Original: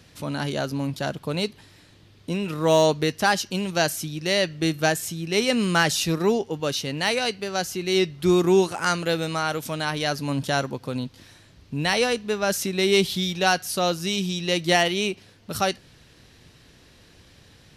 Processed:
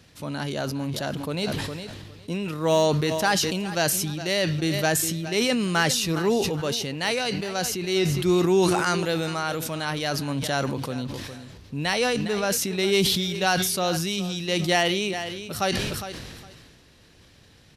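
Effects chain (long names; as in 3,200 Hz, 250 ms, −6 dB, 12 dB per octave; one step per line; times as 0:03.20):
repeating echo 410 ms, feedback 20%, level −16 dB
level that may fall only so fast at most 28 dB per second
level −2.5 dB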